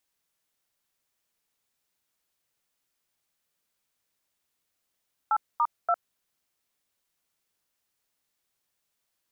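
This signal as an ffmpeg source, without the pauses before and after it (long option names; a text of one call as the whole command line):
ffmpeg -f lavfi -i "aevalsrc='0.0708*clip(min(mod(t,0.288),0.056-mod(t,0.288))/0.002,0,1)*(eq(floor(t/0.288),0)*(sin(2*PI*852*mod(t,0.288))+sin(2*PI*1336*mod(t,0.288)))+eq(floor(t/0.288),1)*(sin(2*PI*941*mod(t,0.288))+sin(2*PI*1209*mod(t,0.288)))+eq(floor(t/0.288),2)*(sin(2*PI*697*mod(t,0.288))+sin(2*PI*1336*mod(t,0.288))))':duration=0.864:sample_rate=44100" out.wav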